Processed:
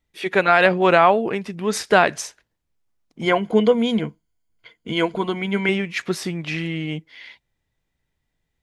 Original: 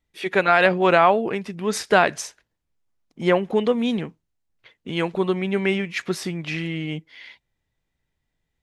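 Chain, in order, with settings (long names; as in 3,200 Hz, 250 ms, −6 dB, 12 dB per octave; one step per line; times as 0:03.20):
0:03.23–0:05.69: EQ curve with evenly spaced ripples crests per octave 1.8, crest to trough 11 dB
level +1.5 dB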